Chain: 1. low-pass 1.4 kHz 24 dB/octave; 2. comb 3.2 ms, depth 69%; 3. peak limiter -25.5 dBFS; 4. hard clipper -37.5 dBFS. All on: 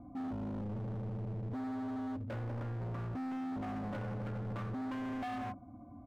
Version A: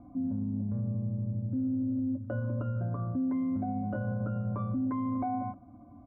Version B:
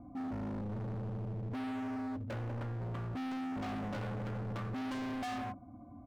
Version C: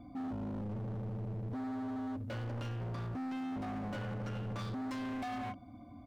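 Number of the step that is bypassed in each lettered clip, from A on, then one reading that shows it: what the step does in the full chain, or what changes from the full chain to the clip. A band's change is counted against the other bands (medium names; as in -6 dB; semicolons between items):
4, distortion -7 dB; 3, mean gain reduction 3.0 dB; 1, 4 kHz band +6.0 dB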